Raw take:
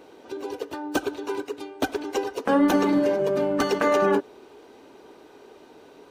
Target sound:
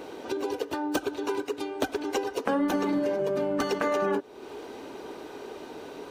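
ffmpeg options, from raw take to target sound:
-af "acompressor=threshold=-37dB:ratio=3,volume=8dB"

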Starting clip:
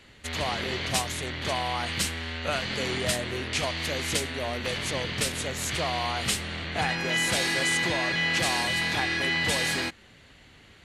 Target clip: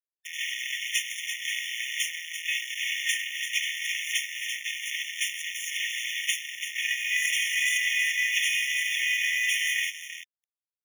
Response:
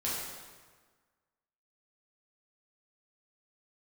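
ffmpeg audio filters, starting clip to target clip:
-filter_complex "[0:a]aecho=1:1:3.2:0.85,acrusher=bits=5:mix=0:aa=0.000001,equalizer=f=290:t=o:w=0.22:g=6,asplit=2[a][b];[b]aeval=exprs='sgn(val(0))*max(abs(val(0))-0.0398,0)':c=same,volume=-9dB[c];[a][c]amix=inputs=2:normalize=0,highshelf=f=5k:g=-6.5,asplit=2[d][e];[e]aecho=0:1:339|678|1017:0.447|0.121|0.0326[f];[d][f]amix=inputs=2:normalize=0,aeval=exprs='sgn(val(0))*max(abs(val(0))-0.0316,0)':c=same,afftfilt=real='re*eq(mod(floor(b*sr/1024/1800),2),1)':imag='im*eq(mod(floor(b*sr/1024/1800),2),1)':win_size=1024:overlap=0.75,volume=4.5dB"

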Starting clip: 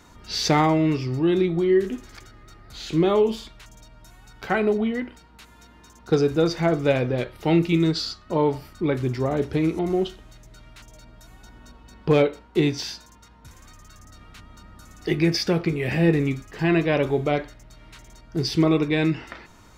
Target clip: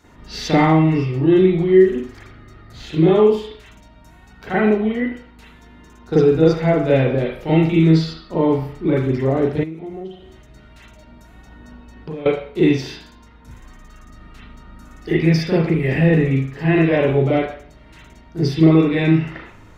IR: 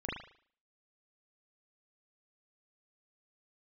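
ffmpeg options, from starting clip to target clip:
-filter_complex "[1:a]atrim=start_sample=2205[a];[0:a][a]afir=irnorm=-1:irlink=0,asettb=1/sr,asplit=3[b][c][d];[b]atrim=end=9.634[e];[c]atrim=start=9.63:end=12.26,asetpts=PTS-STARTPTS,afade=t=in:d=0.004:c=qsin,afade=t=out:st=2.626:d=0.004:c=qsin,acompressor=threshold=-28dB:ratio=10[f];[d]atrim=start=12.256[g];[e][f]acrossfade=d=0.004:c1=hsin:c2=qsin[h];[h][g]acrossfade=d=0.004:c1=qsin:c2=hsin"

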